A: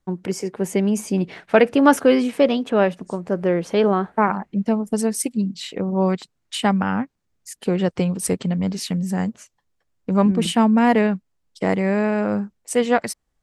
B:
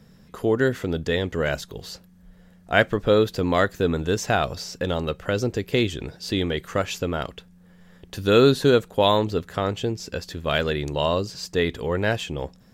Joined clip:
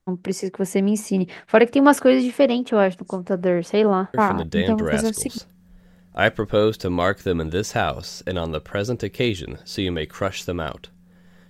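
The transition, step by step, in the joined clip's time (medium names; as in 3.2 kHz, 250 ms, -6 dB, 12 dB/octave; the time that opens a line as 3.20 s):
A
4.76 s: go over to B from 1.30 s, crossfade 1.24 s logarithmic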